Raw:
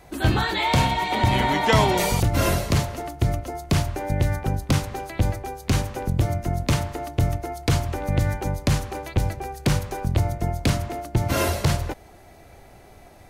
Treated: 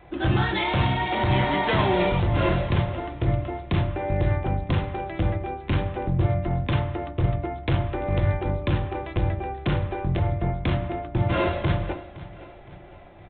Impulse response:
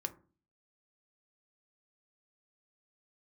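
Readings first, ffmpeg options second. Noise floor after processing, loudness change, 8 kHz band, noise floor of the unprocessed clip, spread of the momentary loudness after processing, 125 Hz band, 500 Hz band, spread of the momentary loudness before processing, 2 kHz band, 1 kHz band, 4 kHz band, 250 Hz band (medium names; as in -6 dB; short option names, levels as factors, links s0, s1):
-45 dBFS, -1.5 dB, under -40 dB, -48 dBFS, 7 LU, -1.0 dB, 0.0 dB, 7 LU, -2.0 dB, -2.5 dB, -5.0 dB, -1.0 dB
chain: -filter_complex "[0:a]aresample=8000,asoftclip=type=hard:threshold=0.126,aresample=44100,aecho=1:1:514|1028|1542|2056:0.141|0.0636|0.0286|0.0129[s0];[1:a]atrim=start_sample=2205[s1];[s0][s1]afir=irnorm=-1:irlink=0"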